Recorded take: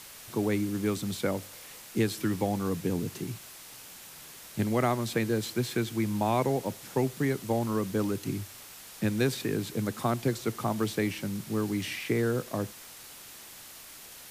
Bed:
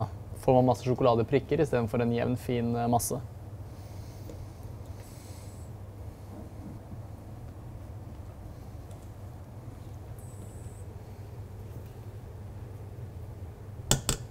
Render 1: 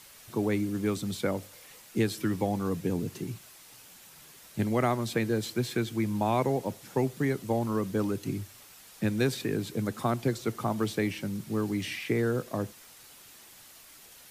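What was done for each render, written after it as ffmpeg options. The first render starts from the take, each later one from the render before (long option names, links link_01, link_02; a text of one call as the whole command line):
ffmpeg -i in.wav -af "afftdn=noise_reduction=6:noise_floor=-48" out.wav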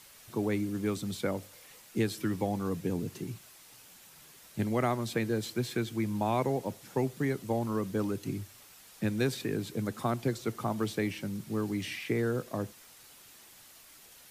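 ffmpeg -i in.wav -af "volume=-2.5dB" out.wav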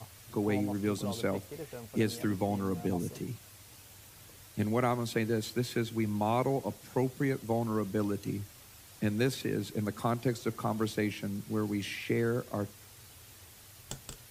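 ffmpeg -i in.wav -i bed.wav -filter_complex "[1:a]volume=-17dB[link_01];[0:a][link_01]amix=inputs=2:normalize=0" out.wav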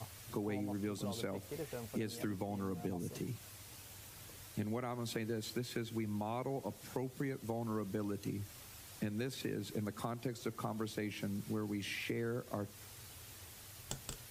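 ffmpeg -i in.wav -af "alimiter=limit=-21dB:level=0:latency=1:release=199,acompressor=threshold=-37dB:ratio=4" out.wav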